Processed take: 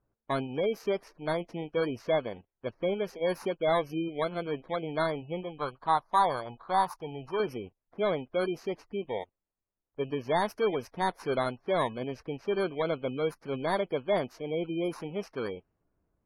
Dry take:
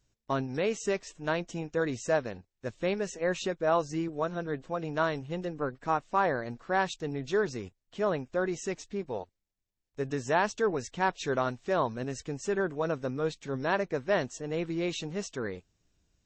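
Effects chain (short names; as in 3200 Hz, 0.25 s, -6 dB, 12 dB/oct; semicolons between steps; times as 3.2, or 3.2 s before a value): FFT order left unsorted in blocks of 16 samples; overdrive pedal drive 12 dB, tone 1300 Hz, clips at -13.5 dBFS; spectral gate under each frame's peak -30 dB strong; low-pass opened by the level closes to 1500 Hz, open at -26.5 dBFS; 5.43–7.4 graphic EQ 250/500/1000/2000 Hz -7/-5/+10/-8 dB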